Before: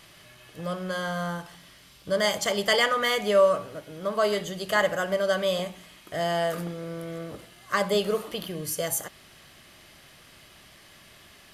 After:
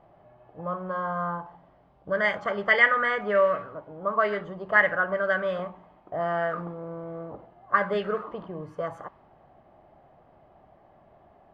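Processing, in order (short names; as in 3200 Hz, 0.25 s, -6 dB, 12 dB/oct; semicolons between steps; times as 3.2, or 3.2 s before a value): envelope low-pass 740–1900 Hz up, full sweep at -19 dBFS; gain -3.5 dB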